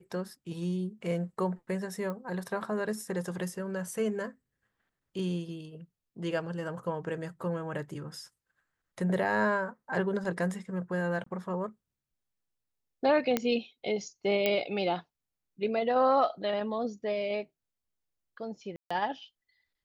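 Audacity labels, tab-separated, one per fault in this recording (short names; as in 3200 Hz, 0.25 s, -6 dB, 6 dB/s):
2.100000	2.100000	pop -25 dBFS
11.240000	11.260000	gap 24 ms
13.370000	13.370000	pop -12 dBFS
14.460000	14.460000	pop -13 dBFS
18.760000	18.910000	gap 0.145 s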